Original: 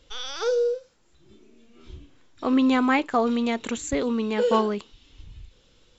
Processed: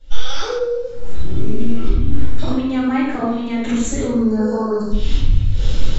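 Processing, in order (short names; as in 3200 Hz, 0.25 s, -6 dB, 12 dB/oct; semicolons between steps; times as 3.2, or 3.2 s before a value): recorder AGC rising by 63 dB/s; 3.03–3.68 high shelf 4700 Hz -5.5 dB; 4.03–4.92 spectral gain 1800–4100 Hz -27 dB; low shelf 160 Hz +9.5 dB; compressor 2:1, threshold -21 dBFS, peak gain reduction 7 dB; shoebox room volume 270 m³, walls mixed, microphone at 7.3 m; 0.59–2.48 mismatched tape noise reduction decoder only; gain -14.5 dB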